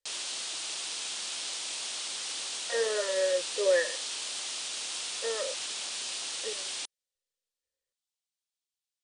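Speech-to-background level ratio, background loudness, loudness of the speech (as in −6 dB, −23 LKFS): 2.5 dB, −33.5 LKFS, −31.0 LKFS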